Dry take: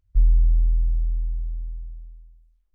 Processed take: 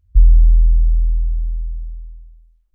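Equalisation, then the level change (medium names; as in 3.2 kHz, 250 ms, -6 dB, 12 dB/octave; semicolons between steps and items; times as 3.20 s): peaking EQ 69 Hz +13 dB 1.4 oct; +1.5 dB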